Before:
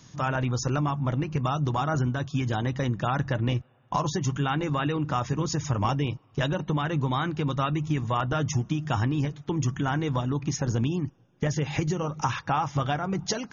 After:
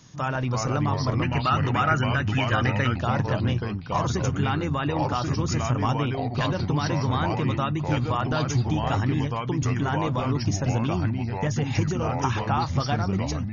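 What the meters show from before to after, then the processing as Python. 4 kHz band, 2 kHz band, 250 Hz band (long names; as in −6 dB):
+3.0 dB, +4.0 dB, +2.0 dB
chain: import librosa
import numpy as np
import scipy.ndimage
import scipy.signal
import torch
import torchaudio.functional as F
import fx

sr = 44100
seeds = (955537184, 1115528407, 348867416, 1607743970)

y = fx.fade_out_tail(x, sr, length_s=0.51)
y = fx.echo_pitch(y, sr, ms=298, semitones=-3, count=2, db_per_echo=-3.0)
y = fx.spec_box(y, sr, start_s=1.23, length_s=1.74, low_hz=1200.0, high_hz=3100.0, gain_db=10)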